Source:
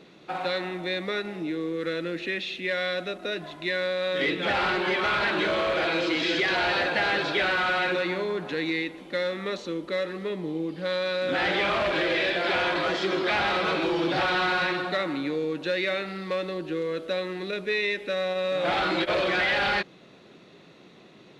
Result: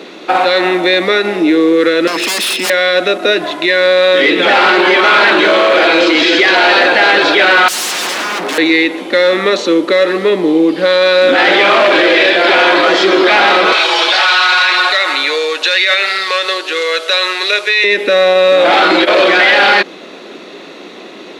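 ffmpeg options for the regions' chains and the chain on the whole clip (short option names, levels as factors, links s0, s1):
-filter_complex "[0:a]asettb=1/sr,asplit=3[s0][s1][s2];[s0]atrim=end=2.074[s3];[s1]atrim=start=2.07:end=2.7,asetpts=PTS-STARTPTS,afade=t=in:d=0.004:c=qsin,afade=t=out:st=0.626:d=0.004:c=qsin,highshelf=f=6100:g=6.5,aeval=exprs='0.0251*(abs(mod(val(0)/0.0251+3,4)-2)-1)':c=same,aeval=exprs='val(0)+0.00355*sin(2*PI*5200*n/s)':c=same[s4];[s2]atrim=start=2.696[s5];[s3][s4]acrossfade=d=0.004:c1=hsin:c2=qsin[s6];[s6][s5]acrossfade=d=0.004:c1=qsin:c2=hsin,asettb=1/sr,asplit=3[s7][s8][s9];[s7]atrim=end=7.684[s10];[s8]atrim=start=7.68:end=8.58,asetpts=PTS-STARTPTS,afade=t=in:d=0.004:c=qsin,afade=t=out:st=0.896:d=0.004:c=qsin,acrossover=split=2800[s11][s12];[s12]acompressor=threshold=0.00891:ratio=4:attack=1:release=60[s13];[s11][s13]amix=inputs=2:normalize=0,aeval=exprs='0.02*(abs(mod(val(0)/0.02+3,4)-2)-1)':c=same[s14];[s9]atrim=start=8.576[s15];[s10][s14]acrossfade=d=0.004:c1=hsin:c2=qsin[s16];[s16][s15]acrossfade=d=0.004:c1=qsin:c2=hsin,asettb=1/sr,asplit=3[s17][s18][s19];[s17]atrim=end=13.724[s20];[s18]atrim=start=13.72:end=17.84,asetpts=PTS-STARTPTS,afade=t=in:d=0.004:c=qsin,afade=t=out:st=4.116:d=0.004:c=qsin,highpass=640,lowpass=6200,aemphasis=mode=production:type=riaa,aecho=1:1:4.7:0.36,atrim=end_sample=181692[s21];[s19]atrim=start=17.836[s22];[s20][s21]acrossfade=d=0.004:c1=hsin:c2=qsin[s23];[s23][s22]acrossfade=d=0.004:c1=qsin:c2=hsin,highpass=f=250:w=0.5412,highpass=f=250:w=1.3066,alimiter=level_in=13.3:limit=0.891:release=50:level=0:latency=1,volume=0.891"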